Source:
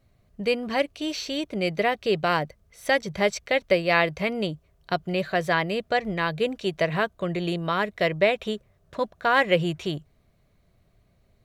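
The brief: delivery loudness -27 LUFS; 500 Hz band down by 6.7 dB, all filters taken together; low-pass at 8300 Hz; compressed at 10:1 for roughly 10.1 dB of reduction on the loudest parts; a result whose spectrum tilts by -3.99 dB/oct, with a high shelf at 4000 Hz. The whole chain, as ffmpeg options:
-af "lowpass=8.3k,equalizer=f=500:t=o:g=-8.5,highshelf=f=4k:g=8,acompressor=threshold=-26dB:ratio=10,volume=5dB"

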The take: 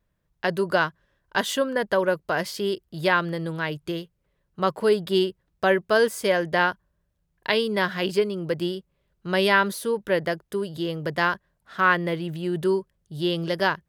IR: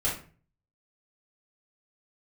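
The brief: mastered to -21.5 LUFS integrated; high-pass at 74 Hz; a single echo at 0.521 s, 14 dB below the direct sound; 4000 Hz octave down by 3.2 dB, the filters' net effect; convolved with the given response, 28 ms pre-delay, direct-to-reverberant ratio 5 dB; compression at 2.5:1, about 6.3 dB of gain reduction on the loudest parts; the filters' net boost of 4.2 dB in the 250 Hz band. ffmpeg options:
-filter_complex "[0:a]highpass=74,equalizer=f=250:t=o:g=7,equalizer=f=4k:t=o:g=-4.5,acompressor=threshold=-23dB:ratio=2.5,aecho=1:1:521:0.2,asplit=2[a][b];[1:a]atrim=start_sample=2205,adelay=28[c];[b][c]afir=irnorm=-1:irlink=0,volume=-13.5dB[d];[a][d]amix=inputs=2:normalize=0,volume=4dB"

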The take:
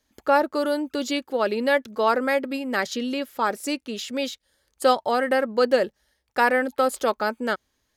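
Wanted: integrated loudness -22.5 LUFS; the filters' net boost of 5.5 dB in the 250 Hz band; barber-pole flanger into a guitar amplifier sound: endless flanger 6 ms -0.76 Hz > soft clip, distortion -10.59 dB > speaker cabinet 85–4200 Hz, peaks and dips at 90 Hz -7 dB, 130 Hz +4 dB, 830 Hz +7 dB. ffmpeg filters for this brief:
-filter_complex "[0:a]equalizer=f=250:t=o:g=6,asplit=2[a][b];[b]adelay=6,afreqshift=-0.76[c];[a][c]amix=inputs=2:normalize=1,asoftclip=threshold=-20.5dB,highpass=85,equalizer=f=90:t=q:w=4:g=-7,equalizer=f=130:t=q:w=4:g=4,equalizer=f=830:t=q:w=4:g=7,lowpass=f=4.2k:w=0.5412,lowpass=f=4.2k:w=1.3066,volume=5.5dB"

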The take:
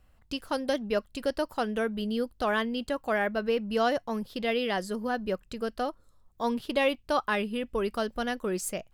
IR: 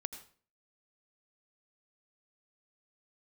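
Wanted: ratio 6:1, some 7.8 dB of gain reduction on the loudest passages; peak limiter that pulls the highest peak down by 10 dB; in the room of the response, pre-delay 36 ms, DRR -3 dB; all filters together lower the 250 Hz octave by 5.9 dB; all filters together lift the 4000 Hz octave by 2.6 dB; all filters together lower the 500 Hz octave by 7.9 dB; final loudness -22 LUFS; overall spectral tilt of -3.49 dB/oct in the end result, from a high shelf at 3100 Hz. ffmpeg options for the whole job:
-filter_complex "[0:a]equalizer=f=250:t=o:g=-5,equalizer=f=500:t=o:g=-8.5,highshelf=f=3.1k:g=-6,equalizer=f=4k:t=o:g=8.5,acompressor=threshold=-33dB:ratio=6,alimiter=level_in=7.5dB:limit=-24dB:level=0:latency=1,volume=-7.5dB,asplit=2[a][b];[1:a]atrim=start_sample=2205,adelay=36[c];[b][c]afir=irnorm=-1:irlink=0,volume=4dB[d];[a][d]amix=inputs=2:normalize=0,volume=15.5dB"

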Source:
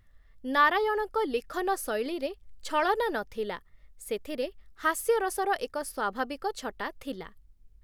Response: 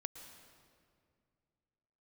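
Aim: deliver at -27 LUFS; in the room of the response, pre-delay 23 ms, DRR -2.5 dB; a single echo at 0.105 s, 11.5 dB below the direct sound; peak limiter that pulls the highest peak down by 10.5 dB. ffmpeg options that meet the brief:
-filter_complex "[0:a]alimiter=limit=-22dB:level=0:latency=1,aecho=1:1:105:0.266,asplit=2[a][b];[1:a]atrim=start_sample=2205,adelay=23[c];[b][c]afir=irnorm=-1:irlink=0,volume=5dB[d];[a][d]amix=inputs=2:normalize=0,volume=1.5dB"

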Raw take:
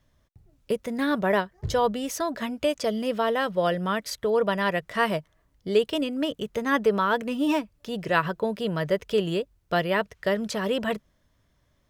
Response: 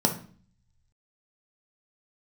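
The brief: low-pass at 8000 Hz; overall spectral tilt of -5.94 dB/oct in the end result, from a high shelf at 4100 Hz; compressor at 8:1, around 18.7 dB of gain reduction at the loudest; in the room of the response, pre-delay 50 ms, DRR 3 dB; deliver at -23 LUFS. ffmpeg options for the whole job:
-filter_complex "[0:a]lowpass=8k,highshelf=f=4.1k:g=-5.5,acompressor=threshold=-36dB:ratio=8,asplit=2[a][b];[1:a]atrim=start_sample=2205,adelay=50[c];[b][c]afir=irnorm=-1:irlink=0,volume=-14.5dB[d];[a][d]amix=inputs=2:normalize=0,volume=12dB"

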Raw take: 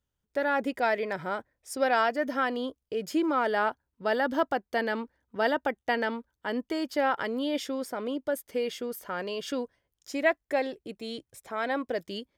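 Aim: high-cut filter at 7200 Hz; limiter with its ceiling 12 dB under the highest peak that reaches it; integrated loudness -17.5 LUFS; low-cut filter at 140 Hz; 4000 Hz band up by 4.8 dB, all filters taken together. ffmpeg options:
-af "highpass=140,lowpass=7.2k,equalizer=f=4k:t=o:g=7,volume=15.5dB,alimiter=limit=-6dB:level=0:latency=1"

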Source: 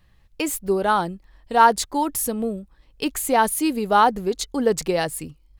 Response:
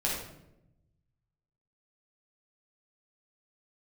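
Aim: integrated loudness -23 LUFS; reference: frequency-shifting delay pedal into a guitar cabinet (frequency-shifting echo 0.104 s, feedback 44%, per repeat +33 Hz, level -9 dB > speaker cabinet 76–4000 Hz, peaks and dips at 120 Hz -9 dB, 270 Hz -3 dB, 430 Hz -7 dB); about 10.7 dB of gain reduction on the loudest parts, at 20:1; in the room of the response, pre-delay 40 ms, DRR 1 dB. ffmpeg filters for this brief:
-filter_complex "[0:a]acompressor=threshold=-19dB:ratio=20,asplit=2[a][b];[1:a]atrim=start_sample=2205,adelay=40[c];[b][c]afir=irnorm=-1:irlink=0,volume=-8.5dB[d];[a][d]amix=inputs=2:normalize=0,asplit=6[e][f][g][h][i][j];[f]adelay=104,afreqshift=33,volume=-9dB[k];[g]adelay=208,afreqshift=66,volume=-16.1dB[l];[h]adelay=312,afreqshift=99,volume=-23.3dB[m];[i]adelay=416,afreqshift=132,volume=-30.4dB[n];[j]adelay=520,afreqshift=165,volume=-37.5dB[o];[e][k][l][m][n][o]amix=inputs=6:normalize=0,highpass=76,equalizer=f=120:t=q:w=4:g=-9,equalizer=f=270:t=q:w=4:g=-3,equalizer=f=430:t=q:w=4:g=-7,lowpass=f=4k:w=0.5412,lowpass=f=4k:w=1.3066,volume=2dB"

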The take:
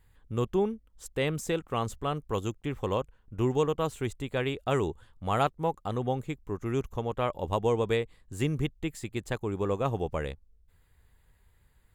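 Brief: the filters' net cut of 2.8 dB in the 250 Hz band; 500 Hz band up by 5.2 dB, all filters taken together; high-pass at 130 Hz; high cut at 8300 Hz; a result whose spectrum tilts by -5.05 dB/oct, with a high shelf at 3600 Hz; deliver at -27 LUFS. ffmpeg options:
-af "highpass=130,lowpass=8.3k,equalizer=f=250:t=o:g=-7.5,equalizer=f=500:t=o:g=8,highshelf=f=3.6k:g=7.5,volume=1.5dB"

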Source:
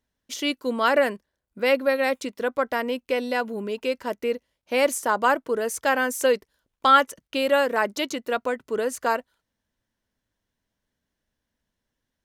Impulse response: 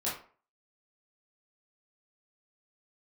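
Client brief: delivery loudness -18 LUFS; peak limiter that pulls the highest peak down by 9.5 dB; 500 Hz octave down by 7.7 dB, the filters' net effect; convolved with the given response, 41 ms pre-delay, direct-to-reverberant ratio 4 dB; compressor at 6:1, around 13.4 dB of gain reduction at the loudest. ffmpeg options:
-filter_complex "[0:a]equalizer=f=500:t=o:g=-8.5,acompressor=threshold=-27dB:ratio=6,alimiter=limit=-22.5dB:level=0:latency=1,asplit=2[a][b];[1:a]atrim=start_sample=2205,adelay=41[c];[b][c]afir=irnorm=-1:irlink=0,volume=-9.5dB[d];[a][d]amix=inputs=2:normalize=0,volume=15dB"

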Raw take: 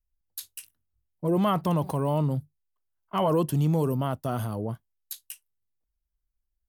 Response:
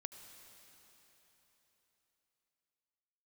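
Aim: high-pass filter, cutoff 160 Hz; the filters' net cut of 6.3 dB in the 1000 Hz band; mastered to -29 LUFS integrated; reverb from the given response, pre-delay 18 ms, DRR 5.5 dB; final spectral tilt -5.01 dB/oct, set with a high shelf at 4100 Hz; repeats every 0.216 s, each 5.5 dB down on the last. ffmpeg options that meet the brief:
-filter_complex "[0:a]highpass=160,equalizer=f=1k:t=o:g=-8.5,highshelf=f=4.1k:g=7.5,aecho=1:1:216|432|648|864|1080|1296|1512:0.531|0.281|0.149|0.079|0.0419|0.0222|0.0118,asplit=2[a][b];[1:a]atrim=start_sample=2205,adelay=18[c];[b][c]afir=irnorm=-1:irlink=0,volume=-1.5dB[d];[a][d]amix=inputs=2:normalize=0,volume=-0.5dB"

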